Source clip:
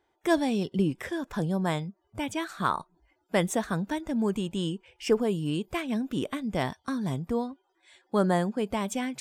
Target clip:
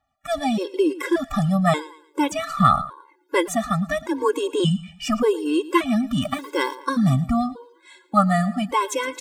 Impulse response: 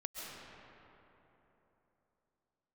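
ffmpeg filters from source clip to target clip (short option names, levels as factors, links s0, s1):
-filter_complex "[0:a]asettb=1/sr,asplit=3[s0][s1][s2];[s0]atrim=end=2.394[s3];[s1]atrim=start=2.39:end=3.37,asetpts=PTS-STARTPTS,afade=t=in:d=0.004:c=qsin,afade=t=out:st=0.976:d=0.004:c=qsin,lowshelf=f=220:g=8.5[s4];[s2]atrim=start=3.366[s5];[s3][s4]acrossfade=d=0.004:c1=hsin:c2=qsin[s6];[s6][s5]acrossfade=d=0.004:c1=qsin:c2=hsin,dynaudnorm=f=230:g=3:m=3.76,asettb=1/sr,asplit=3[s7][s8][s9];[s7]atrim=end=6.224[s10];[s8]atrim=start=6.22:end=6.86,asetpts=PTS-STARTPTS,afade=t=in:d=0.004:c=qsin,afade=t=out:st=0.636:d=0.004:c=qsin,acrusher=bits=6:mix=0:aa=0.5[s11];[s9]atrim=start=6.856[s12];[s10][s11]acrossfade=d=0.004:c1=hsin:c2=qsin[s13];[s13][s12]acrossfade=d=0.004:c1=qsin:c2=hsin,asplit=2[s14][s15];[s15]aecho=0:1:113|226|339:0.126|0.0428|0.0146[s16];[s14][s16]amix=inputs=2:normalize=0,asettb=1/sr,asplit=3[s17][s18][s19];[s17]atrim=end=4.024[s20];[s18]atrim=start=4.02:end=4.6,asetpts=PTS-STARTPTS,afade=t=in:d=0.004:c=qsin,afade=t=out:st=0.576:d=0.004:c=qsin,afreqshift=36[s21];[s19]atrim=start=4.596[s22];[s20][s21]acrossfade=d=0.004:c1=hsin:c2=qsin[s23];[s23][s22]acrossfade=d=0.004:c1=qsin:c2=hsin,aphaser=in_gain=1:out_gain=1:delay=3.1:decay=0.34:speed=0.44:type=triangular,equalizer=f=1200:w=3.8:g=9.5,afftfilt=real='re*gt(sin(2*PI*0.86*pts/sr)*(1-2*mod(floor(b*sr/1024/280),2)),0)':imag='im*gt(sin(2*PI*0.86*pts/sr)*(1-2*mod(floor(b*sr/1024/280),2)),0)':win_size=1024:overlap=0.75"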